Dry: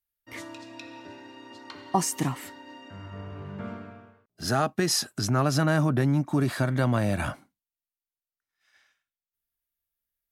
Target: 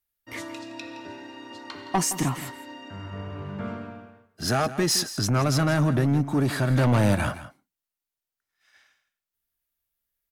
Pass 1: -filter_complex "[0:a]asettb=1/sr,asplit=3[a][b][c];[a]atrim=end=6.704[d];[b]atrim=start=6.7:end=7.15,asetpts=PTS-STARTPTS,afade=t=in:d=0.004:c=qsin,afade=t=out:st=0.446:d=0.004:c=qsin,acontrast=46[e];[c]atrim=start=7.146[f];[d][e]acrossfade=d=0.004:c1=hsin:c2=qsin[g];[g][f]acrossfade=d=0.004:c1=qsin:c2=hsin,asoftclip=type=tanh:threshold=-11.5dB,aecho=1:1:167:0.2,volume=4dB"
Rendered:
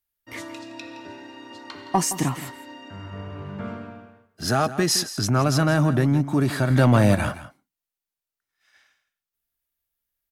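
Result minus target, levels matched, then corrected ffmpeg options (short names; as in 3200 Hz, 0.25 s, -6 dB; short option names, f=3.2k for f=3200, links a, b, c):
soft clip: distortion -10 dB
-filter_complex "[0:a]asettb=1/sr,asplit=3[a][b][c];[a]atrim=end=6.704[d];[b]atrim=start=6.7:end=7.15,asetpts=PTS-STARTPTS,afade=t=in:d=0.004:c=qsin,afade=t=out:st=0.446:d=0.004:c=qsin,acontrast=46[e];[c]atrim=start=7.146[f];[d][e]acrossfade=d=0.004:c1=hsin:c2=qsin[g];[g][f]acrossfade=d=0.004:c1=qsin:c2=hsin,asoftclip=type=tanh:threshold=-20dB,aecho=1:1:167:0.2,volume=4dB"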